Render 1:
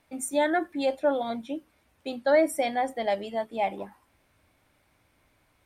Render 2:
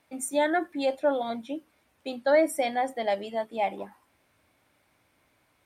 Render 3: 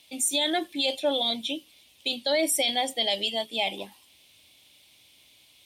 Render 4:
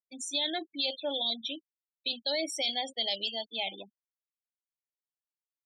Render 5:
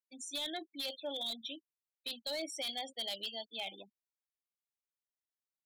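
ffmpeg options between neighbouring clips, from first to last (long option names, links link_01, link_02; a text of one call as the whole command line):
ffmpeg -i in.wav -af "highpass=frequency=140:poles=1" out.wav
ffmpeg -i in.wav -af "highshelf=frequency=2200:width_type=q:width=3:gain=13.5,alimiter=limit=-15.5dB:level=0:latency=1:release=19" out.wav
ffmpeg -i in.wav -af "agate=range=-33dB:threshold=-44dB:ratio=3:detection=peak,afftfilt=real='re*gte(hypot(re,im),0.0282)':imag='im*gte(hypot(re,im),0.0282)':win_size=1024:overlap=0.75,lowpass=frequency=5300:width_type=q:width=3.8,volume=-8.5dB" out.wav
ffmpeg -i in.wav -af "aeval=exprs='0.0631*(abs(mod(val(0)/0.0631+3,4)-2)-1)':channel_layout=same,volume=-7dB" out.wav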